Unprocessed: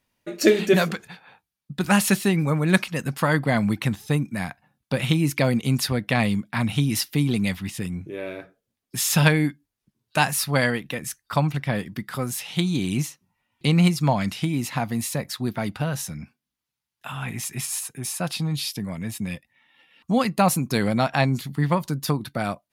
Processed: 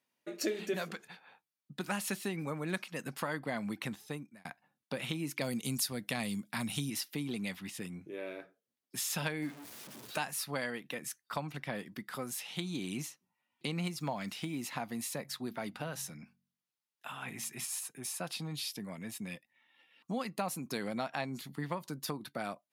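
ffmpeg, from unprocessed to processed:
ffmpeg -i in.wav -filter_complex "[0:a]asettb=1/sr,asplit=3[link_01][link_02][link_03];[link_01]atrim=end=5.414[link_04];[link_02]atrim=start=5.41:end=6.9,asetpts=PTS-STARTPTS,afade=type=in:duration=0.004:curve=qsin,afade=type=out:start_time=1.486:duration=0.004:curve=qsin,bass=frequency=250:gain=6,treble=frequency=4000:gain=13[link_05];[link_03]atrim=start=6.896[link_06];[link_04][link_05]acrossfade=duration=0.004:curve1=hsin:curve2=qsin[link_07];[link_07][link_06]acrossfade=duration=0.004:curve1=qsin:curve2=hsin,asettb=1/sr,asplit=3[link_08][link_09][link_10];[link_08]atrim=end=9.424[link_11];[link_09]atrim=start=9.42:end=10.18,asetpts=PTS-STARTPTS,afade=type=in:duration=0.004:curve=qsin,afade=type=out:start_time=0.756:duration=0.004:curve=qsin,aeval=exprs='val(0)+0.5*0.0237*sgn(val(0))':channel_layout=same[link_12];[link_10]atrim=start=10.176[link_13];[link_11][link_12]acrossfade=duration=0.004:curve1=hsin:curve2=qsin[link_14];[link_14][link_13]acrossfade=duration=0.004:curve1=qsin:curve2=hsin,asettb=1/sr,asplit=3[link_15][link_16][link_17];[link_15]atrim=end=13.854[link_18];[link_16]atrim=start=13.85:end=14.71,asetpts=PTS-STARTPTS,afade=type=in:duration=0.004:curve=qsin,afade=type=out:start_time=0.856:duration=0.004:curve=qsin,acrusher=bits=8:mix=0:aa=0.5[link_19];[link_17]atrim=start=14.706[link_20];[link_18][link_19]acrossfade=duration=0.004:curve1=hsin:curve2=qsin[link_21];[link_21][link_20]acrossfade=duration=0.004:curve1=qsin:curve2=hsin,asplit=3[link_22][link_23][link_24];[link_22]afade=type=out:start_time=15.24:duration=0.02[link_25];[link_23]bandreject=frequency=45.81:width_type=h:width=4,bandreject=frequency=91.62:width_type=h:width=4,bandreject=frequency=137.43:width_type=h:width=4,bandreject=frequency=183.24:width_type=h:width=4,bandreject=frequency=229.05:width_type=h:width=4,afade=type=in:start_time=15.24:duration=0.02,afade=type=out:start_time=17.63:duration=0.02[link_26];[link_24]afade=type=in:start_time=17.63:duration=0.02[link_27];[link_25][link_26][link_27]amix=inputs=3:normalize=0,asplit=2[link_28][link_29];[link_28]atrim=end=4.45,asetpts=PTS-STARTPTS,afade=type=out:start_time=3.89:duration=0.56[link_30];[link_29]atrim=start=4.45,asetpts=PTS-STARTPTS,afade=type=in:duration=0.004:curve=hsin[link_31];[link_30][link_31]concat=n=2:v=0:a=1,highpass=220,acompressor=threshold=-26dB:ratio=2.5,volume=-8.5dB" out.wav

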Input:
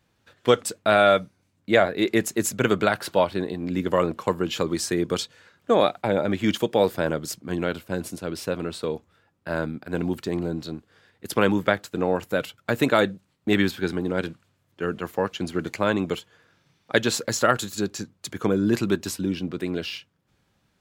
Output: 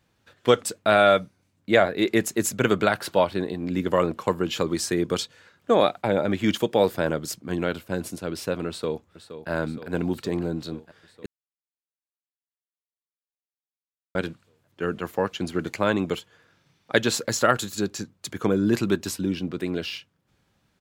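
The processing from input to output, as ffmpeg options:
ffmpeg -i in.wav -filter_complex "[0:a]asplit=2[link_01][link_02];[link_02]afade=type=in:start_time=8.68:duration=0.01,afade=type=out:start_time=9.5:duration=0.01,aecho=0:1:470|940|1410|1880|2350|2820|3290|3760|4230|4700|5170|5640:0.251189|0.188391|0.141294|0.10597|0.0794777|0.0596082|0.0447062|0.0335296|0.0251472|0.0188604|0.0141453|0.010609[link_03];[link_01][link_03]amix=inputs=2:normalize=0,asplit=3[link_04][link_05][link_06];[link_04]atrim=end=11.26,asetpts=PTS-STARTPTS,afade=type=out:start_time=11.256:duration=0.004:curve=hsin[link_07];[link_05]atrim=start=11.26:end=14.15,asetpts=PTS-STARTPTS,volume=0[link_08];[link_06]atrim=start=14.15,asetpts=PTS-STARTPTS,afade=type=in:duration=0.004:curve=hsin[link_09];[link_07][link_08][link_09]concat=n=3:v=0:a=1" out.wav

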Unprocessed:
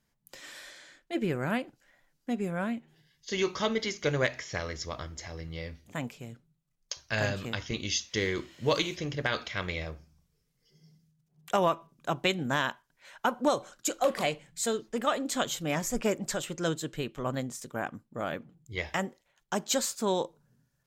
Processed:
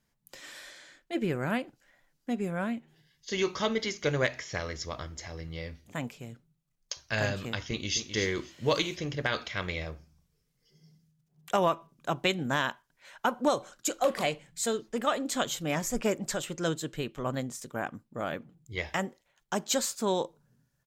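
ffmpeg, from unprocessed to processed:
ffmpeg -i in.wav -filter_complex "[0:a]asplit=2[link_01][link_02];[link_02]afade=type=in:start_time=7.65:duration=0.01,afade=type=out:start_time=8.13:duration=0.01,aecho=0:1:260|520:0.354813|0.053222[link_03];[link_01][link_03]amix=inputs=2:normalize=0" out.wav

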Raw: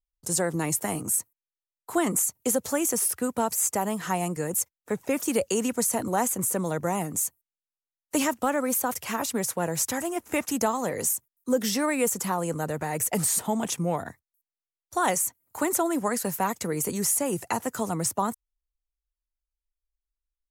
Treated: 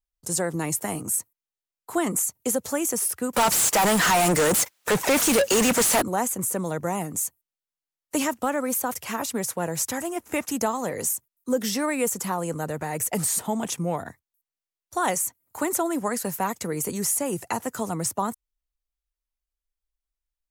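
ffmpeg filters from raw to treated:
ffmpeg -i in.wav -filter_complex "[0:a]asettb=1/sr,asplit=3[link_01][link_02][link_03];[link_01]atrim=end=3.334[link_04];[link_02]atrim=start=3.33:end=6.02,asetpts=PTS-STARTPTS,afade=type=in:duration=0.004:curve=qsin,afade=type=out:start_time=2.686:duration=0.004:curve=qsin,asplit=2[link_05][link_06];[link_06]highpass=frequency=720:poles=1,volume=36dB,asoftclip=type=tanh:threshold=-13dB[link_07];[link_05][link_07]amix=inputs=2:normalize=0,lowpass=frequency=7800:poles=1,volume=-6dB[link_08];[link_03]atrim=start=6.016[link_09];[link_04][link_08]acrossfade=duration=0.004:curve1=hsin:curve2=qsin[link_10];[link_10][link_09]acrossfade=duration=0.004:curve1=qsin:curve2=hsin" out.wav

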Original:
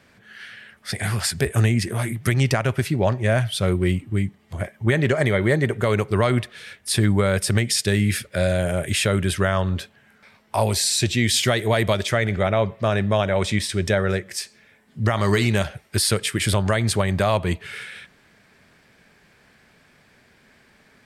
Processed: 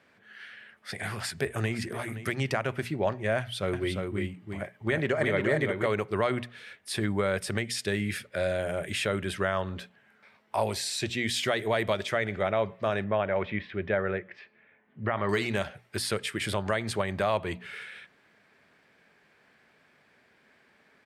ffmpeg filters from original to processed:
ffmpeg -i in.wav -filter_complex "[0:a]asplit=2[link_01][link_02];[link_02]afade=type=in:start_time=1.11:duration=0.01,afade=type=out:start_time=1.76:duration=0.01,aecho=0:1:520|1040:0.199526|0.0299289[link_03];[link_01][link_03]amix=inputs=2:normalize=0,asettb=1/sr,asplit=3[link_04][link_05][link_06];[link_04]atrim=end=3.384[link_07];[link_05]atrim=start=3.38:end=5.86,asetpts=PTS-STARTPTS,afade=type=in:duration=0.004:curve=qsin,afade=type=out:start_time=2.476:duration=0.004:curve=qsin,aecho=1:1:350:0.596,atrim=end_sample=109368[link_08];[link_06]atrim=start=5.856[link_09];[link_07][link_08]acrossfade=duration=0.004:curve1=hsin:curve2=qsin[link_10];[link_10][link_09]acrossfade=duration=0.004:curve1=qsin:curve2=hsin,asettb=1/sr,asplit=3[link_11][link_12][link_13];[link_11]atrim=end=13.044[link_14];[link_12]atrim=start=13.04:end=15.29,asetpts=PTS-STARTPTS,afade=type=in:duration=0.004:curve=qsin,afade=type=out:start_time=2.246:duration=0.004:curve=qsin,lowpass=frequency=2700:width=0.5412,lowpass=frequency=2700:width=1.3066[link_15];[link_13]atrim=start=15.286[link_16];[link_14][link_15]acrossfade=duration=0.004:curve1=hsin:curve2=qsin[link_17];[link_17][link_16]acrossfade=duration=0.004:curve1=qsin:curve2=hsin,highpass=frequency=160:poles=1,bass=frequency=250:gain=-3,treble=frequency=4000:gain=-8,bandreject=frequency=60:width_type=h:width=6,bandreject=frequency=120:width_type=h:width=6,bandreject=frequency=180:width_type=h:width=6,bandreject=frequency=240:width_type=h:width=6,volume=-5.5dB" out.wav

